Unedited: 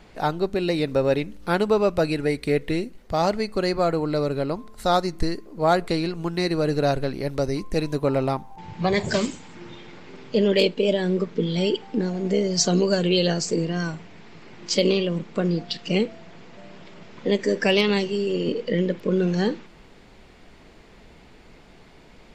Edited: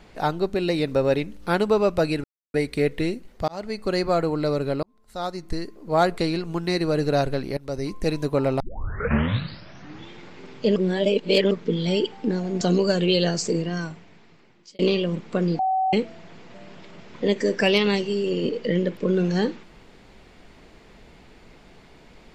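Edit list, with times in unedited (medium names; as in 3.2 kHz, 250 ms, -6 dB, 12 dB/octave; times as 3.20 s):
2.24 s: insert silence 0.30 s
3.18–3.74 s: fade in equal-power
4.53–5.72 s: fade in
7.27–7.77 s: fade in equal-power, from -18.5 dB
8.30 s: tape start 1.51 s
10.46–11.21 s: reverse
12.31–12.64 s: delete
13.54–14.82 s: fade out
15.62–15.96 s: bleep 758 Hz -19 dBFS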